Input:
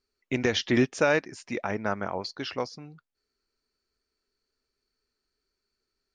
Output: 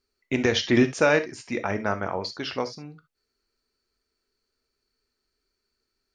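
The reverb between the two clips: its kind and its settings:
reverb whose tail is shaped and stops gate 90 ms flat, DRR 9 dB
level +2.5 dB

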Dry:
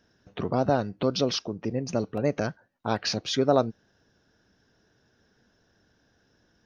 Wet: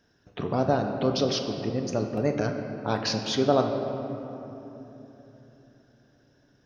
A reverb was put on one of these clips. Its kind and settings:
rectangular room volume 200 cubic metres, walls hard, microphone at 0.3 metres
level −1 dB

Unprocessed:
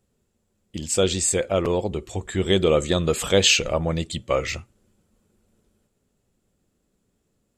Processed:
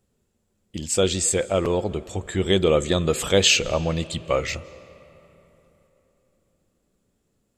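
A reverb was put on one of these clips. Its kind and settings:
comb and all-pass reverb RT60 3.6 s, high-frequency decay 0.6×, pre-delay 120 ms, DRR 19 dB

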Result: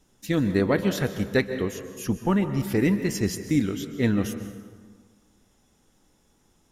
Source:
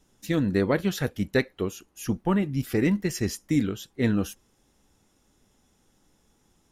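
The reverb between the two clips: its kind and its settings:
dense smooth reverb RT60 1.6 s, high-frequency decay 0.6×, pre-delay 115 ms, DRR 9.5 dB
level +1 dB

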